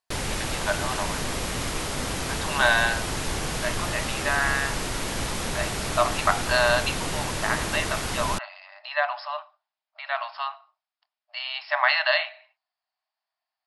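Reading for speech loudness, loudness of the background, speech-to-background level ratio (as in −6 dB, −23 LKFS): −26.5 LKFS, −29.0 LKFS, 2.5 dB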